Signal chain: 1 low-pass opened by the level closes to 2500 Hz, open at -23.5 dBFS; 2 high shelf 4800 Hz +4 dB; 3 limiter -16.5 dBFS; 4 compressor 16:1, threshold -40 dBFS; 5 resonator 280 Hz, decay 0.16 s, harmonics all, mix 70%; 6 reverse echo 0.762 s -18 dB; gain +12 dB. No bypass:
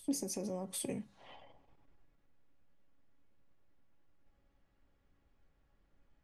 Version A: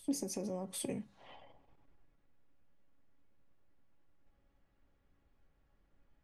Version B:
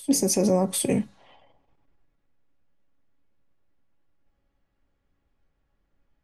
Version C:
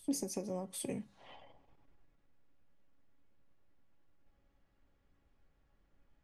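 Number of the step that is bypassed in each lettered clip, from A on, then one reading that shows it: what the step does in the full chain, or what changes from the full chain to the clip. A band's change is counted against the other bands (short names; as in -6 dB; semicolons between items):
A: 2, 8 kHz band -2.0 dB; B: 4, mean gain reduction 13.5 dB; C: 3, mean gain reduction 1.5 dB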